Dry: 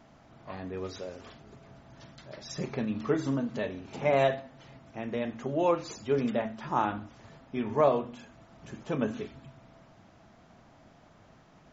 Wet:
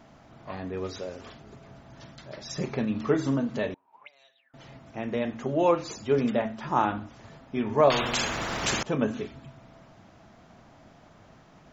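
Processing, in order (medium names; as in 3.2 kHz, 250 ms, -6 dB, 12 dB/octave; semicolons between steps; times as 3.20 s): 3.74–4.54 s: auto-wah 750–4800 Hz, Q 22, up, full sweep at -21.5 dBFS; 7.90–8.83 s: spectrum-flattening compressor 4:1; trim +3.5 dB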